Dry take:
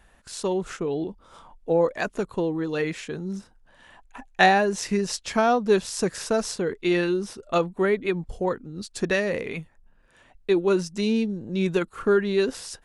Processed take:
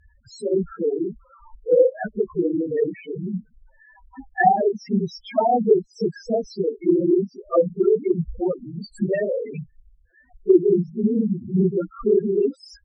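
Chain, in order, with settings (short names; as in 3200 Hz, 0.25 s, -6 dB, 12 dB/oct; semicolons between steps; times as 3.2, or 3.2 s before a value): phase scrambler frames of 50 ms; loudest bins only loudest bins 4; treble ducked by the level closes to 800 Hz, closed at -19.5 dBFS; gain +5.5 dB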